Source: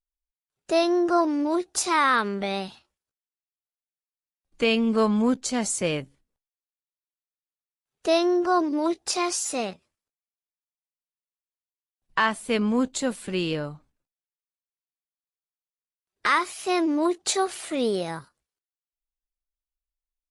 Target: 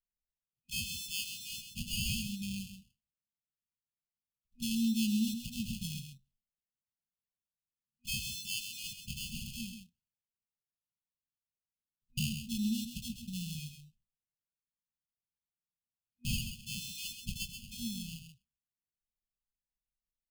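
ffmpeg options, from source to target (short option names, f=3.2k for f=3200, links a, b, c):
-af "acrusher=samples=23:mix=1:aa=0.000001,afftfilt=real='re*(1-between(b*sr/4096,240,2500))':imag='im*(1-between(b*sr/4096,240,2500))':win_size=4096:overlap=0.75,aecho=1:1:132:0.398,volume=-8dB"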